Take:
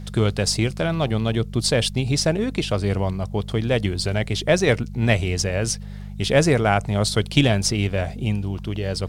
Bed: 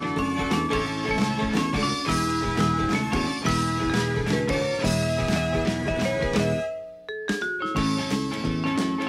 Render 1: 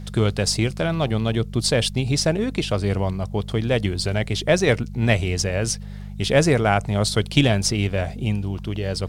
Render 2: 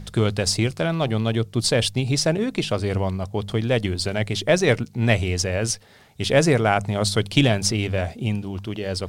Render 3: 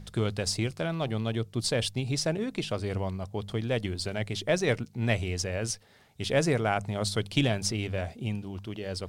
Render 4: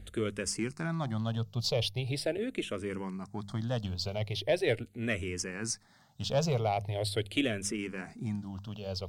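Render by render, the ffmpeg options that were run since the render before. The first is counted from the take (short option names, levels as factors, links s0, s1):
-af anull
-af "bandreject=f=50:t=h:w=4,bandreject=f=100:t=h:w=4,bandreject=f=150:t=h:w=4,bandreject=f=200:t=h:w=4"
-af "volume=0.398"
-filter_complex "[0:a]asoftclip=type=tanh:threshold=0.168,asplit=2[s0][s1];[s1]afreqshift=-0.41[s2];[s0][s2]amix=inputs=2:normalize=1"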